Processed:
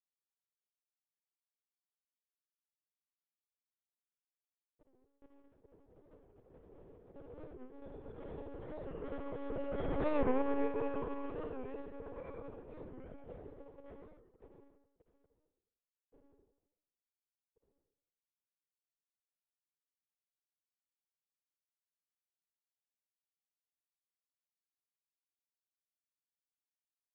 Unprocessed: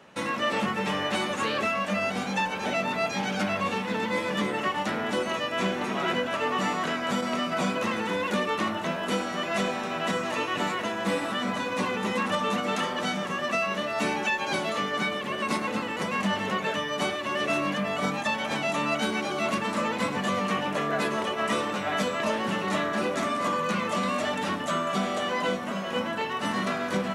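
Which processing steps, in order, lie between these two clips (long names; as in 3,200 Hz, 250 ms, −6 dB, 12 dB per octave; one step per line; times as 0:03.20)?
source passing by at 0:10.04, 48 m/s, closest 12 metres
first difference
comb filter 4.6 ms, depth 34%
log-companded quantiser 4 bits
low-pass with resonance 440 Hz, resonance Q 3.9
slap from a distant wall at 23 metres, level −10 dB
convolution reverb RT60 0.95 s, pre-delay 52 ms, DRR −0.5 dB
one-pitch LPC vocoder at 8 kHz 280 Hz
wow of a warped record 45 rpm, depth 160 cents
level +15 dB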